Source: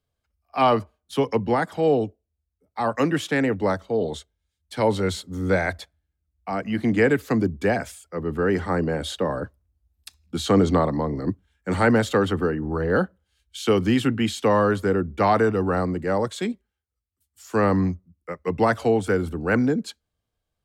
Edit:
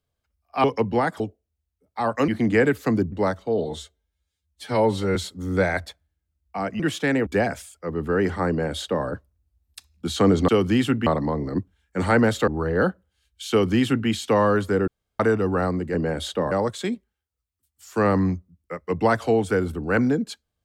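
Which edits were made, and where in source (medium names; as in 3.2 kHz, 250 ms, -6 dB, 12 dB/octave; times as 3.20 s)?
0.64–1.19 s: delete
1.75–2.00 s: delete
3.08–3.55 s: swap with 6.72–7.56 s
4.07–5.08 s: stretch 1.5×
8.78–9.35 s: copy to 16.09 s
12.19–12.62 s: delete
13.65–14.23 s: copy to 10.78 s
15.02–15.34 s: room tone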